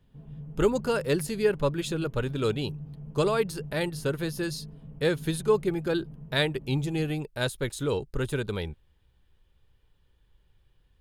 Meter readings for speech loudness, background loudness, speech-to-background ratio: −29.0 LKFS, −43.5 LKFS, 14.5 dB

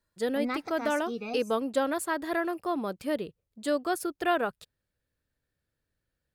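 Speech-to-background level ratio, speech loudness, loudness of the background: 6.5 dB, −30.5 LKFS, −37.0 LKFS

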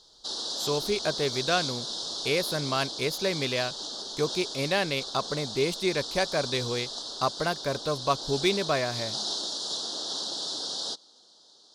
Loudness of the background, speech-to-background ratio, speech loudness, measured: −32.5 LKFS, 3.0 dB, −29.5 LKFS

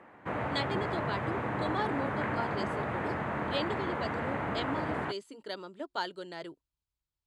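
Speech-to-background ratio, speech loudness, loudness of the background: −4.5 dB, −38.5 LKFS, −34.0 LKFS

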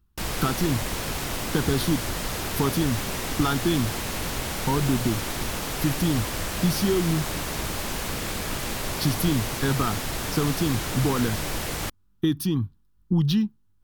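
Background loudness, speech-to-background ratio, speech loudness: −29.5 LKFS, 3.0 dB, −26.5 LKFS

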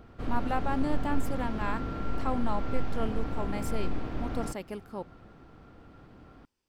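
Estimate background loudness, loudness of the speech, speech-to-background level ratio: −36.5 LKFS, −35.5 LKFS, 1.0 dB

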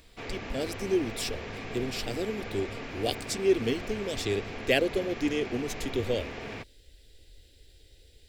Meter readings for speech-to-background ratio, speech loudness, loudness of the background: 8.0 dB, −31.0 LKFS, −39.0 LKFS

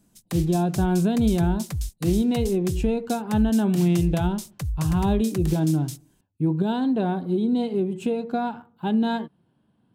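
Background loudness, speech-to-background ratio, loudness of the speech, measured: −32.5 LKFS, 8.5 dB, −24.0 LKFS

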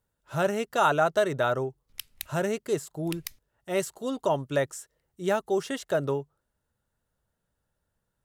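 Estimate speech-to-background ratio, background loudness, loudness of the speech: 13.0 dB, −41.5 LKFS, −28.5 LKFS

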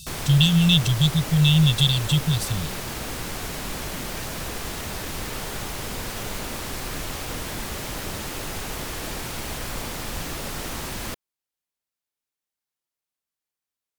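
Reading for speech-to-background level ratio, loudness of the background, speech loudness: 12.0 dB, −31.0 LKFS, −19.0 LKFS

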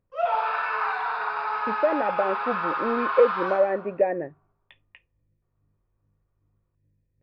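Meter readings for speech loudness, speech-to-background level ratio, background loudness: −25.5 LKFS, 1.5 dB, −27.0 LKFS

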